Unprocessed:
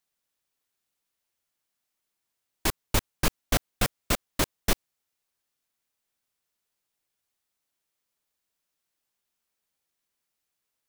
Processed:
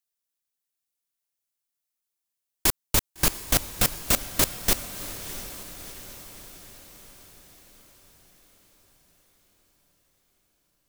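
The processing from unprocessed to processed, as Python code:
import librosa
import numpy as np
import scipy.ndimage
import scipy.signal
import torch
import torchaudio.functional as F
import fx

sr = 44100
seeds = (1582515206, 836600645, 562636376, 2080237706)

y = fx.high_shelf(x, sr, hz=4800.0, db=10.0)
y = fx.level_steps(y, sr, step_db=22)
y = fx.echo_diffused(y, sr, ms=683, feedback_pct=57, wet_db=-12)
y = y * librosa.db_to_amplitude(3.0)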